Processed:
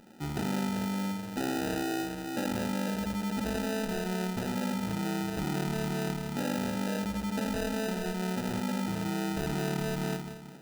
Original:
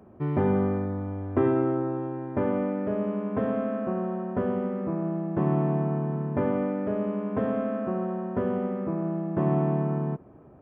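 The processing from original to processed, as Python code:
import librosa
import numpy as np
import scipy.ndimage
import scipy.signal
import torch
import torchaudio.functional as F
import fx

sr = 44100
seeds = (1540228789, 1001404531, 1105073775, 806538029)

p1 = scipy.signal.sosfilt(scipy.signal.bessel(4, 320.0, 'highpass', norm='mag', fs=sr, output='sos'), x)
p2 = p1 + fx.echo_feedback(p1, sr, ms=179, feedback_pct=43, wet_db=-6, dry=0)
p3 = fx.phaser_stages(p2, sr, stages=2, low_hz=440.0, high_hz=1100.0, hz=2.2, feedback_pct=25)
p4 = p3 + 0.75 * np.pad(p3, (int(1.2 * sr / 1000.0), 0))[:len(p3)]
p5 = fx.sample_hold(p4, sr, seeds[0], rate_hz=1100.0, jitter_pct=0)
p6 = fx.over_compress(p5, sr, threshold_db=-37.0, ratio=-1.0)
p7 = p5 + F.gain(torch.from_numpy(p6), 2.0).numpy()
y = F.gain(torch.from_numpy(p7), -2.5).numpy()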